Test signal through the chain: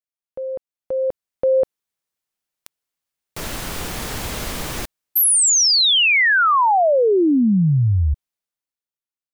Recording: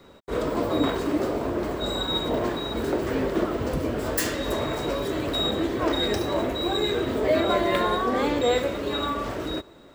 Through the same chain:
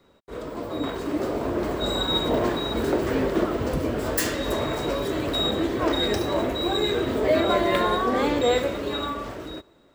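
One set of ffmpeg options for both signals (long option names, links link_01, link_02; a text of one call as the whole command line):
ffmpeg -i in.wav -af "dynaudnorm=framelen=180:gausssize=13:maxgain=16dB,volume=-8.5dB" out.wav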